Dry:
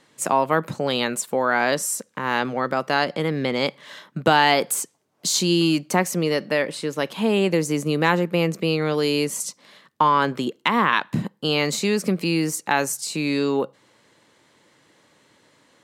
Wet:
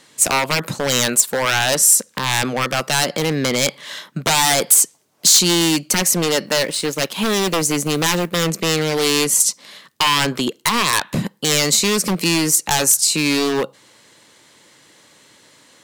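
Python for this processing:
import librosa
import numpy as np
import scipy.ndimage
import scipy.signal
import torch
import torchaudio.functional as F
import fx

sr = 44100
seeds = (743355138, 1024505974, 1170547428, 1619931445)

p1 = fx.law_mismatch(x, sr, coded='A', at=(6.46, 8.39))
p2 = fx.rider(p1, sr, range_db=3, speed_s=0.5)
p3 = p1 + (p2 * librosa.db_to_amplitude(0.0))
p4 = 10.0 ** (-11.0 / 20.0) * (np.abs((p3 / 10.0 ** (-11.0 / 20.0) + 3.0) % 4.0 - 2.0) - 1.0)
p5 = fx.high_shelf(p4, sr, hz=2900.0, db=10.5)
y = p5 * librosa.db_to_amplitude(-2.0)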